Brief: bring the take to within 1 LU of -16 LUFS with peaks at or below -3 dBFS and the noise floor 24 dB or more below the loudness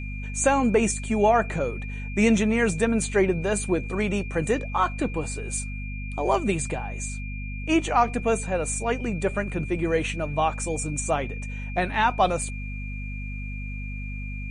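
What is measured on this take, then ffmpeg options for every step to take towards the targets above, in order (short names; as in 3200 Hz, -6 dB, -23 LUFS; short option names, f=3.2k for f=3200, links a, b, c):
hum 50 Hz; harmonics up to 250 Hz; hum level -31 dBFS; steady tone 2400 Hz; tone level -39 dBFS; loudness -25.5 LUFS; peak -9.0 dBFS; loudness target -16.0 LUFS
-> -af "bandreject=f=50:t=h:w=4,bandreject=f=100:t=h:w=4,bandreject=f=150:t=h:w=4,bandreject=f=200:t=h:w=4,bandreject=f=250:t=h:w=4"
-af "bandreject=f=2.4k:w=30"
-af "volume=9.5dB,alimiter=limit=-3dB:level=0:latency=1"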